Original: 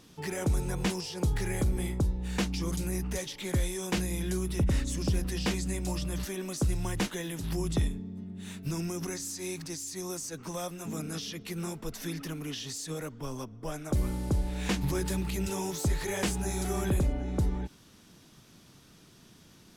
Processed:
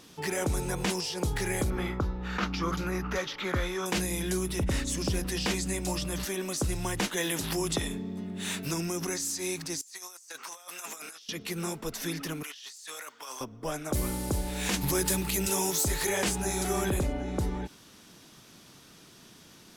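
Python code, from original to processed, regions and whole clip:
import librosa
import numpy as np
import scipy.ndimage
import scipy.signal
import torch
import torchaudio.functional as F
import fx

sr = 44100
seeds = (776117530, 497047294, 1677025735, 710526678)

y = fx.chain(x, sr, fx.moving_average(points=5),
    fx.peak_eq(hz=1300.0, db=14.5, octaves=0.56), at=(1.7, 3.86))
y = fx.chain(y, sr, fx.low_shelf(hz=190.0, db=-10.0),
    fx.env_flatten(amount_pct=50), at=(7.17, 8.74))
y = fx.chain(y, sr, fx.highpass(hz=970.0, slope=12),
    fx.over_compress(threshold_db=-48.0, ratio=-0.5), at=(9.81, 11.29))
y = fx.chain(y, sr, fx.highpass(hz=1100.0, slope=12),
    fx.over_compress(threshold_db=-49.0, ratio=-1.0), at=(12.43, 13.41))
y = fx.chain(y, sr, fx.high_shelf(hz=7400.0, db=10.5),
    fx.quant_companded(bits=8), at=(13.93, 16.09))
y = fx.low_shelf(y, sr, hz=200.0, db=-9.5)
y = fx.over_compress(y, sr, threshold_db=-31.0, ratio=-1.0)
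y = F.gain(torch.from_numpy(y), 5.0).numpy()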